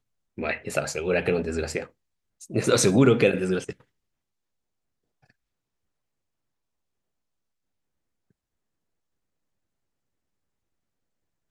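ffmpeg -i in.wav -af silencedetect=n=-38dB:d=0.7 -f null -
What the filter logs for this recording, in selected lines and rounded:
silence_start: 3.72
silence_end: 11.50 | silence_duration: 7.78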